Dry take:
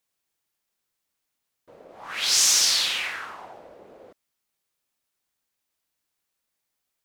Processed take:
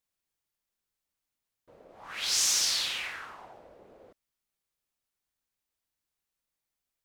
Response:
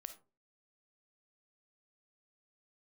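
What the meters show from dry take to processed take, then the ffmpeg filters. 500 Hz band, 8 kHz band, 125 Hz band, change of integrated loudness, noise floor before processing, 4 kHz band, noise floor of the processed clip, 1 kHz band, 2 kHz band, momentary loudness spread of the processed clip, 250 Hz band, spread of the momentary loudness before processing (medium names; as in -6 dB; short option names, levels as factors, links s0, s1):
-6.5 dB, -7.0 dB, no reading, -7.0 dB, -81 dBFS, -7.0 dB, under -85 dBFS, -7.0 dB, -7.0 dB, 19 LU, -6.0 dB, 19 LU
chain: -af "lowshelf=f=88:g=11,volume=0.447"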